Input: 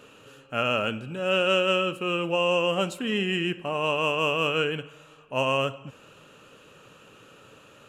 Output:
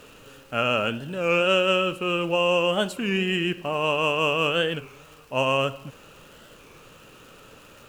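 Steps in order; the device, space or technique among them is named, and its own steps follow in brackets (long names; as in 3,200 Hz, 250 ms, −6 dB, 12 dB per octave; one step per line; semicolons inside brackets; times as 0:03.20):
warped LP (wow of a warped record 33 1/3 rpm, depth 160 cents; surface crackle 140 per second −43 dBFS; pink noise bed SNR 31 dB)
level +2 dB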